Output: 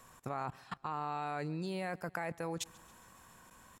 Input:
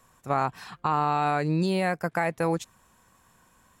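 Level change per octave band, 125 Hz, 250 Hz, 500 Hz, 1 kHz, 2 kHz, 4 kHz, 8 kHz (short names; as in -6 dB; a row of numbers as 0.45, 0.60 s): -13.0, -13.0, -12.5, -13.0, -12.0, -8.5, -2.5 dB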